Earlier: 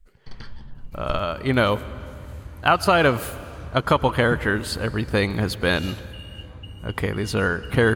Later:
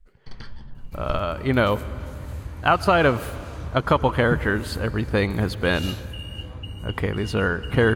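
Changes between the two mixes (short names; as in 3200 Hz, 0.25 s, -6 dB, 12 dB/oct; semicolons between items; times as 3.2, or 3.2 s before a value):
speech: add high shelf 3700 Hz -8 dB; second sound +4.0 dB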